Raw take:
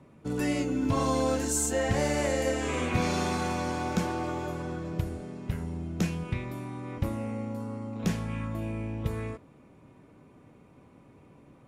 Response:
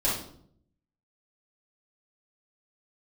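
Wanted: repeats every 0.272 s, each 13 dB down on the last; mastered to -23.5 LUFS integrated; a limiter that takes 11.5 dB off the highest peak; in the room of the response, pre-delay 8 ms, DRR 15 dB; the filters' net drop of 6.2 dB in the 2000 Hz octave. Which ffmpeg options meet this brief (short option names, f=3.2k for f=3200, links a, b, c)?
-filter_complex "[0:a]equalizer=f=2k:t=o:g=-8,alimiter=level_in=3dB:limit=-24dB:level=0:latency=1,volume=-3dB,aecho=1:1:272|544|816:0.224|0.0493|0.0108,asplit=2[a][b];[1:a]atrim=start_sample=2205,adelay=8[c];[b][c]afir=irnorm=-1:irlink=0,volume=-25dB[d];[a][d]amix=inputs=2:normalize=0,volume=12dB"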